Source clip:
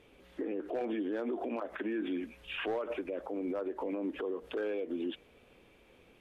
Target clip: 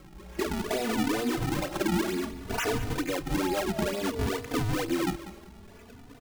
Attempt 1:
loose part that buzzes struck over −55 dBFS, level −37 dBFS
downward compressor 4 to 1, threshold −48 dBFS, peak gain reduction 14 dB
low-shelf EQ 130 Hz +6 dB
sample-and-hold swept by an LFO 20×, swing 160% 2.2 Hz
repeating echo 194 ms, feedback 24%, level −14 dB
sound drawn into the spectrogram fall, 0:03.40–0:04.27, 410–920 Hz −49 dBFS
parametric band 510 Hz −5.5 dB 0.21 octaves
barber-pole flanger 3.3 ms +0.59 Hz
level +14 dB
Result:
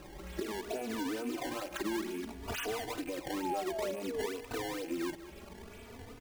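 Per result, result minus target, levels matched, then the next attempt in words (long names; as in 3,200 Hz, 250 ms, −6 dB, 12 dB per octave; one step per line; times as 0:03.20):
downward compressor: peak gain reduction +8 dB; sample-and-hold swept by an LFO: distortion −9 dB
loose part that buzzes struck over −55 dBFS, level −37 dBFS
downward compressor 4 to 1, threshold −37 dBFS, peak gain reduction 6 dB
low-shelf EQ 130 Hz +6 dB
sample-and-hold swept by an LFO 20×, swing 160% 2.2 Hz
repeating echo 194 ms, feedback 24%, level −14 dB
sound drawn into the spectrogram fall, 0:03.40–0:04.27, 410–920 Hz −49 dBFS
parametric band 510 Hz −5.5 dB 0.21 octaves
barber-pole flanger 3.3 ms +0.59 Hz
level +14 dB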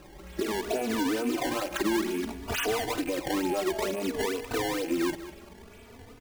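sample-and-hold swept by an LFO: distortion −10 dB
loose part that buzzes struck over −55 dBFS, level −37 dBFS
downward compressor 4 to 1, threshold −37 dBFS, peak gain reduction 6 dB
low-shelf EQ 130 Hz +6 dB
sample-and-hold swept by an LFO 47×, swing 160% 2.2 Hz
repeating echo 194 ms, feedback 24%, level −14 dB
sound drawn into the spectrogram fall, 0:03.40–0:04.27, 410–920 Hz −49 dBFS
parametric band 510 Hz −5.5 dB 0.21 octaves
barber-pole flanger 3.3 ms +0.59 Hz
level +14 dB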